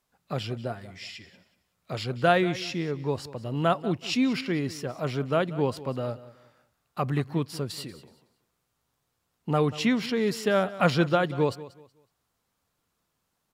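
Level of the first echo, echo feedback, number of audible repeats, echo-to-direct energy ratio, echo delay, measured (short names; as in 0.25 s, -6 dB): -17.0 dB, 27%, 2, -16.5 dB, 0.186 s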